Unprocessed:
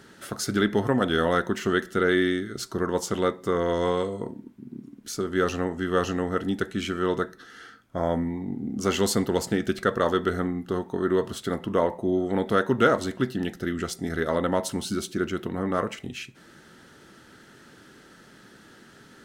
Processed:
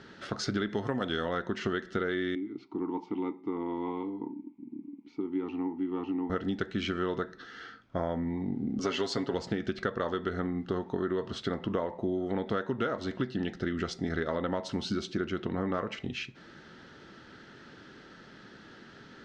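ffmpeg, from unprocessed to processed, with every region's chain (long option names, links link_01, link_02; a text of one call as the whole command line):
ffmpeg -i in.wav -filter_complex "[0:a]asettb=1/sr,asplit=3[link_01][link_02][link_03];[link_01]atrim=end=0.694[link_04];[link_02]atrim=start=0.69:end=1.29,asetpts=PTS-STARTPTS,afade=type=in:duration=0.004:curve=qsin,afade=type=out:start_time=0.596:duration=0.004:curve=qsin,highpass=55,aemphasis=mode=production:type=50kf[link_05];[link_03]atrim=start=1.286[link_06];[link_04][link_05]acrossfade=duration=0.004:curve1=hsin:curve2=qsin[link_07];[link_07][link_06]acrossfade=duration=0.004:curve1=qsin:curve2=hsin,asettb=1/sr,asplit=3[link_08][link_09][link_10];[link_08]atrim=end=2.354[link_11];[link_09]atrim=start=2.35:end=6.3,asetpts=PTS-STARTPTS,afade=type=in:duration=0.004:curve=qsin,afade=type=out:start_time=3.946:duration=0.004:curve=qsin,highshelf=frequency=4700:gain=-11.5,acontrast=49,asplit=3[link_12][link_13][link_14];[link_12]bandpass=frequency=300:width_type=q:width=8,volume=0dB[link_15];[link_13]bandpass=frequency=870:width_type=q:width=8,volume=-6dB[link_16];[link_14]bandpass=frequency=2240:width_type=q:width=8,volume=-9dB[link_17];[link_15][link_16][link_17]amix=inputs=3:normalize=0[link_18];[link_10]atrim=start=6.296[link_19];[link_11][link_18]acrossfade=duration=0.004:curve1=hsin:curve2=qsin[link_20];[link_20][link_19]acrossfade=duration=0.004:curve1=qsin:curve2=hsin,asettb=1/sr,asplit=3[link_21][link_22][link_23];[link_21]atrim=end=8.794[link_24];[link_22]atrim=start=8.79:end=9.34,asetpts=PTS-STARTPTS,afade=type=in:duration=0.004:curve=qsin,afade=type=out:start_time=0.546:duration=0.004:curve=qsin,highpass=frequency=200:poles=1,aecho=1:1:7.2:0.58,atrim=end_sample=24255[link_25];[link_23]atrim=start=9.336[link_26];[link_24][link_25]acrossfade=duration=0.004:curve1=hsin:curve2=qsin[link_27];[link_27][link_26]acrossfade=duration=0.004:curve1=qsin:curve2=hsin,lowpass=frequency=5200:width=0.5412,lowpass=frequency=5200:width=1.3066,acompressor=threshold=-27dB:ratio=10" out.wav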